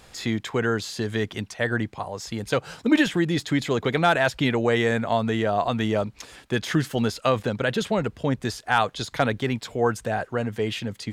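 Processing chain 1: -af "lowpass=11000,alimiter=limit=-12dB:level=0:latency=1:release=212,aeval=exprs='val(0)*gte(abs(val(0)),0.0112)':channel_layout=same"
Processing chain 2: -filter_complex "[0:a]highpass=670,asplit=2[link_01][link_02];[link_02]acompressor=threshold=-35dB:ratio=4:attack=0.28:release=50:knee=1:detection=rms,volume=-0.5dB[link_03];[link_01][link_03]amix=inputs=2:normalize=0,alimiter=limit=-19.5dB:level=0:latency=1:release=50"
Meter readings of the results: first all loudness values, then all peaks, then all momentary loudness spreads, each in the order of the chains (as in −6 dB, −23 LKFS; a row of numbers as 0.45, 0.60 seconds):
−26.5, −30.5 LKFS; −12.0, −19.5 dBFS; 6, 4 LU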